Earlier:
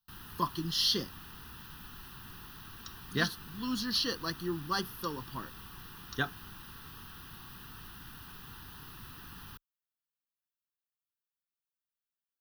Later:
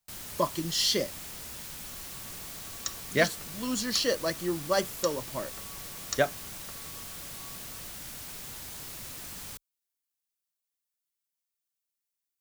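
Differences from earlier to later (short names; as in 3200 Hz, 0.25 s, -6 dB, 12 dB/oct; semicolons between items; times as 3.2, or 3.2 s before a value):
first sound: add resonant high shelf 3200 Hz +7.5 dB, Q 1.5; second sound +9.0 dB; master: remove fixed phaser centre 2200 Hz, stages 6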